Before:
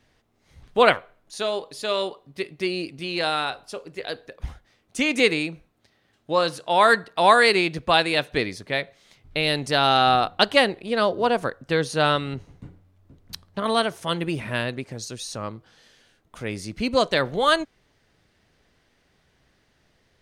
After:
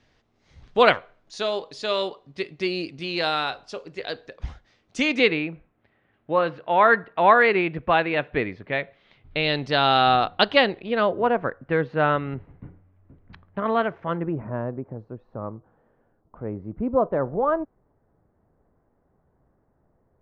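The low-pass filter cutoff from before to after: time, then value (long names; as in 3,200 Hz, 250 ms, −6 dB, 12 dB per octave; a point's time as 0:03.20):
low-pass filter 24 dB per octave
0:05.03 6,400 Hz
0:05.45 2,500 Hz
0:08.52 2,500 Hz
0:09.58 4,200 Hz
0:10.73 4,200 Hz
0:11.29 2,200 Hz
0:13.96 2,200 Hz
0:14.47 1,100 Hz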